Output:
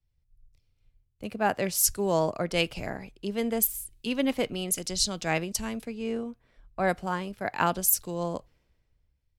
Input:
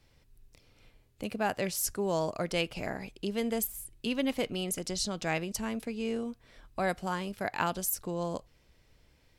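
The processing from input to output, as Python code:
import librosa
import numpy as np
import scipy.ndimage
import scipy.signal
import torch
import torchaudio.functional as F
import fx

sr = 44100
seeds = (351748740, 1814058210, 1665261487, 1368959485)

y = fx.band_widen(x, sr, depth_pct=70)
y = y * librosa.db_to_amplitude(3.0)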